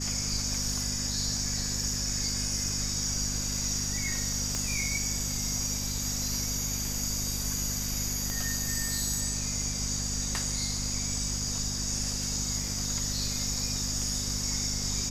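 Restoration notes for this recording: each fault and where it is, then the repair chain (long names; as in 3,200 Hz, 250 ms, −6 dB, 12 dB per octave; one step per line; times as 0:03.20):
mains hum 50 Hz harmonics 5 −36 dBFS
0:04.55: click −18 dBFS
0:08.30: click −20 dBFS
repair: click removal
hum removal 50 Hz, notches 5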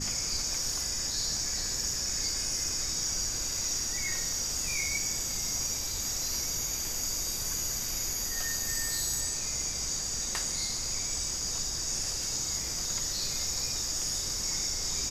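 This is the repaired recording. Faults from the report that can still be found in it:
0:04.55: click
0:08.30: click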